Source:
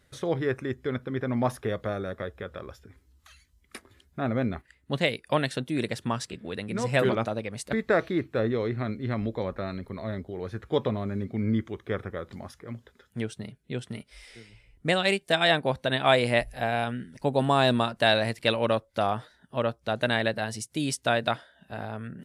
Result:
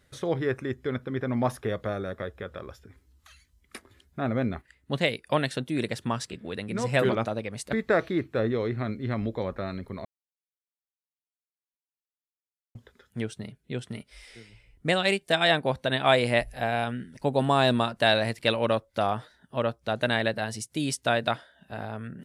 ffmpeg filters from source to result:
ffmpeg -i in.wav -filter_complex "[0:a]asplit=3[link_01][link_02][link_03];[link_01]atrim=end=10.05,asetpts=PTS-STARTPTS,afade=type=out:start_time=10.046:duration=0.004:curve=hsin[link_04];[link_02]atrim=start=10.05:end=12.75,asetpts=PTS-STARTPTS,volume=0[link_05];[link_03]atrim=start=12.75,asetpts=PTS-STARTPTS,afade=type=in:duration=0.004:curve=hsin[link_06];[link_04][link_05][link_06]concat=n=3:v=0:a=1" out.wav

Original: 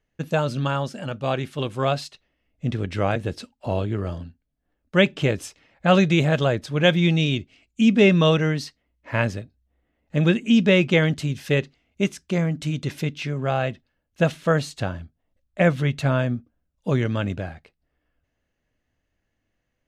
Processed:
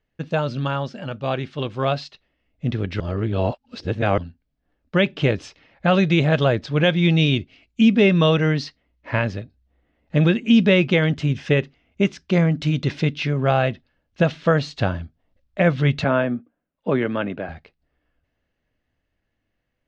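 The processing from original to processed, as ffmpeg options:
ffmpeg -i in.wav -filter_complex "[0:a]asettb=1/sr,asplit=3[link_01][link_02][link_03];[link_01]atrim=end=11.124[link_04];[link_02]atrim=start=11.12:end=12.09,asetpts=PTS-STARTPTS,afade=type=in:duration=0.004:curve=qsin,afade=type=out:start_time=0.966:duration=0.004:curve=qsin,equalizer=frequency=4300:width_type=o:width=0.44:gain=-8[link_05];[link_03]atrim=start=12.086[link_06];[link_04][link_05]acrossfade=duration=0.004:curve1=hsin:curve2=qsin[link_07];[link_07][link_06]acrossfade=duration=0.004:curve1=qsin:curve2=hsin,asettb=1/sr,asplit=3[link_08][link_09][link_10];[link_08]atrim=end=16.044[link_11];[link_09]atrim=start=16.04:end=17.49,asetpts=PTS-STARTPTS,afade=type=in:duration=0.004:curve=qsin,afade=type=out:start_time=1.446:duration=0.004:curve=qsin,acrossover=split=180 3000:gain=0.0708 1 0.126[link_12][link_13][link_14];[link_12][link_13][link_14]amix=inputs=3:normalize=0[link_15];[link_10]atrim=start=17.486[link_16];[link_11][link_15]acrossfade=duration=0.004:curve1=hsin:curve2=qsin[link_17];[link_17][link_16]acrossfade=duration=0.004:curve1=qsin:curve2=hsin,asplit=3[link_18][link_19][link_20];[link_18]atrim=end=3.002[link_21];[link_19]atrim=start=2.998:end=4.182,asetpts=PTS-STARTPTS,areverse[link_22];[link_20]atrim=start=4.178[link_23];[link_21][link_22]acrossfade=duration=0.004:curve1=hsin:curve2=hsin[link_24];[link_24][link_23]acrossfade=duration=0.004:curve1=hsin:curve2=hsin,lowpass=frequency=5200:width=0.5412,lowpass=frequency=5200:width=1.3066,dynaudnorm=framelen=330:gausssize=17:maxgain=11.5dB,alimiter=limit=-7dB:level=0:latency=1:release=342" out.wav

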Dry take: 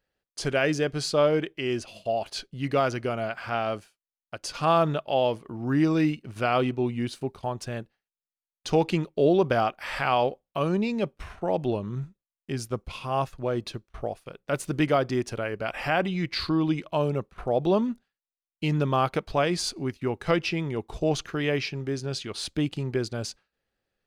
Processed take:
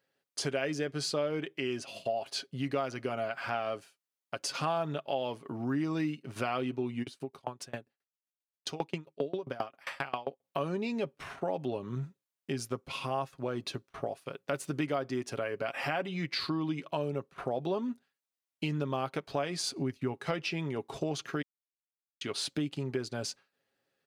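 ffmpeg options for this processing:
ffmpeg -i in.wav -filter_complex "[0:a]asplit=3[link_01][link_02][link_03];[link_01]afade=type=out:start_time=7.02:duration=0.02[link_04];[link_02]aeval=exprs='val(0)*pow(10,-29*if(lt(mod(7.5*n/s,1),2*abs(7.5)/1000),1-mod(7.5*n/s,1)/(2*abs(7.5)/1000),(mod(7.5*n/s,1)-2*abs(7.5)/1000)/(1-2*abs(7.5)/1000))/20)':channel_layout=same,afade=type=in:start_time=7.02:duration=0.02,afade=type=out:start_time=10.43:duration=0.02[link_05];[link_03]afade=type=in:start_time=10.43:duration=0.02[link_06];[link_04][link_05][link_06]amix=inputs=3:normalize=0,asettb=1/sr,asplit=3[link_07][link_08][link_09];[link_07]atrim=end=19.674[link_10];[link_08]atrim=start=19.67:end=20.13,asetpts=PTS-STARTPTS,afade=type=in:duration=0.004:curve=qsin,afade=type=out:start_time=0.456:duration=0.004:curve=qsin,equalizer=frequency=64:width=0.36:gain=8[link_11];[link_09]atrim=start=20.126[link_12];[link_10][link_11]acrossfade=duration=0.004:curve1=hsin:curve2=qsin[link_13];[link_13][link_12]acrossfade=duration=0.004:curve1=qsin:curve2=hsin,asplit=3[link_14][link_15][link_16];[link_14]atrim=end=21.42,asetpts=PTS-STARTPTS,afade=type=out:start_time=21.416:duration=0.004:curve=hsin[link_17];[link_15]atrim=start=21.42:end=22.21,asetpts=PTS-STARTPTS,volume=0[link_18];[link_16]atrim=start=22.21,asetpts=PTS-STARTPTS,afade=type=in:duration=0.004:curve=hsin[link_19];[link_17][link_18][link_19]concat=n=3:v=0:a=1,highpass=160,aecho=1:1:7.3:0.42,acompressor=threshold=-34dB:ratio=3,volume=1.5dB" out.wav

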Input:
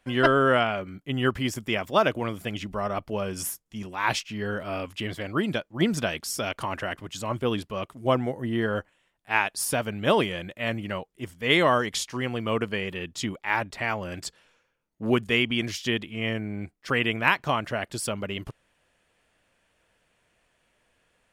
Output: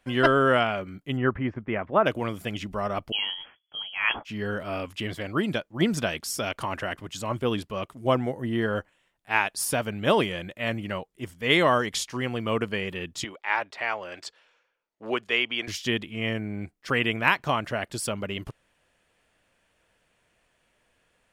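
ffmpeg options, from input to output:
ffmpeg -i in.wav -filter_complex "[0:a]asplit=3[link_01][link_02][link_03];[link_01]afade=type=out:start_time=1.16:duration=0.02[link_04];[link_02]lowpass=frequency=2000:width=0.5412,lowpass=frequency=2000:width=1.3066,afade=type=in:start_time=1.16:duration=0.02,afade=type=out:start_time=2.05:duration=0.02[link_05];[link_03]afade=type=in:start_time=2.05:duration=0.02[link_06];[link_04][link_05][link_06]amix=inputs=3:normalize=0,asettb=1/sr,asplit=3[link_07][link_08][link_09];[link_07]atrim=end=3.124[link_10];[link_08]atrim=start=3.12:end=4.25,asetpts=PTS-STARTPTS,afade=type=in:duration=0.004:curve=qsin,afade=type=out:start_time=1.126:duration=0.004:curve=qsin,lowpass=frequency=2900:width_type=q:width=0.5098,lowpass=frequency=2900:width_type=q:width=0.6013,lowpass=frequency=2900:width_type=q:width=0.9,lowpass=frequency=2900:width_type=q:width=2.563,afreqshift=-3400[link_11];[link_09]atrim=start=4.246[link_12];[link_10][link_11]acrossfade=duration=0.004:curve1=hsin:curve2=qsin[link_13];[link_13][link_12]acrossfade=duration=0.004:curve1=qsin:curve2=hsin,asettb=1/sr,asplit=3[link_14][link_15][link_16];[link_14]atrim=end=13.244[link_17];[link_15]atrim=start=13.24:end=15.68,asetpts=PTS-STARTPTS,afade=type=in:duration=0.004:curve=qsin,afade=type=out:start_time=2.436:duration=0.004:curve=qsin,acrossover=split=380 5900:gain=0.112 1 0.2[link_18][link_19][link_20];[link_18][link_19][link_20]amix=inputs=3:normalize=0[link_21];[link_16]atrim=start=15.676[link_22];[link_17][link_21]acrossfade=duration=0.004:curve1=hsin:curve2=qsin[link_23];[link_23][link_22]acrossfade=duration=0.004:curve1=qsin:curve2=hsin" out.wav

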